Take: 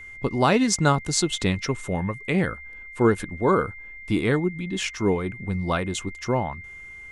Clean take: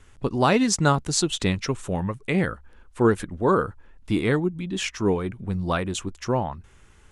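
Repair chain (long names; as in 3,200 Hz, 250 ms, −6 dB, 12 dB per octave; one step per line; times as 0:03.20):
notch filter 2,100 Hz, Q 30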